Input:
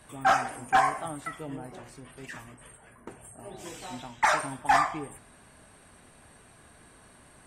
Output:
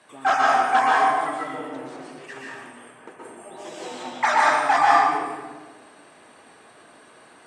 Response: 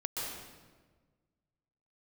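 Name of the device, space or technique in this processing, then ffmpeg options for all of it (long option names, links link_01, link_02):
supermarket ceiling speaker: -filter_complex "[0:a]highpass=310,lowpass=6400[link_01];[1:a]atrim=start_sample=2205[link_02];[link_01][link_02]afir=irnorm=-1:irlink=0,volume=4dB"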